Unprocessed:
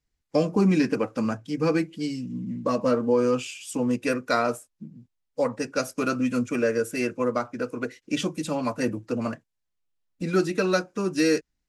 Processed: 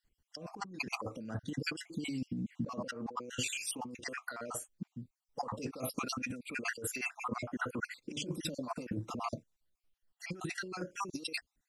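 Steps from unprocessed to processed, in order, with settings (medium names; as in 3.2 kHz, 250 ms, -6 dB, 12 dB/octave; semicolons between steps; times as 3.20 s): random holes in the spectrogram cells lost 52%; compressor with a negative ratio -36 dBFS, ratio -1; trim -4 dB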